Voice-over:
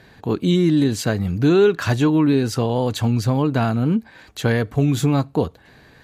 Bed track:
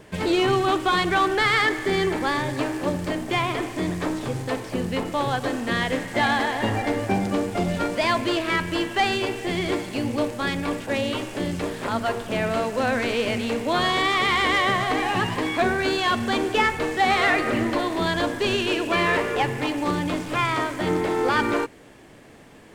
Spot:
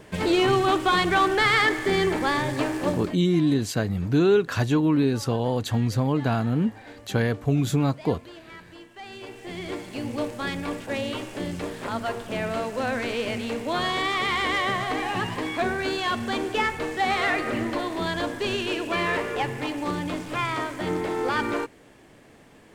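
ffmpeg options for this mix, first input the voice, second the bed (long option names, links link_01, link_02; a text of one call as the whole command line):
ffmpeg -i stem1.wav -i stem2.wav -filter_complex "[0:a]adelay=2700,volume=-4.5dB[link_01];[1:a]volume=17dB,afade=type=out:start_time=2.9:duration=0.27:silence=0.0891251,afade=type=in:start_time=9.01:duration=1.24:silence=0.141254[link_02];[link_01][link_02]amix=inputs=2:normalize=0" out.wav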